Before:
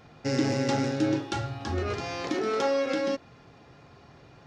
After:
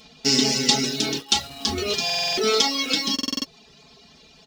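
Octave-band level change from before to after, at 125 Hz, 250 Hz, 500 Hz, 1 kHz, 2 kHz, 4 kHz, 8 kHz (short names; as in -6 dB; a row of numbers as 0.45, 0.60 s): -3.5, +1.5, +1.0, +3.0, +7.0, +19.0, +18.0 dB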